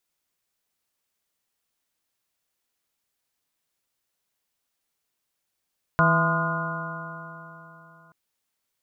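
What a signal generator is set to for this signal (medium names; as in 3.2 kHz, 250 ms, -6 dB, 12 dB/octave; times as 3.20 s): stretched partials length 2.13 s, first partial 162 Hz, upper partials -13/-12/-4/-14.5/-1/-4.5/-0.5 dB, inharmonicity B 0.0035, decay 3.43 s, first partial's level -20 dB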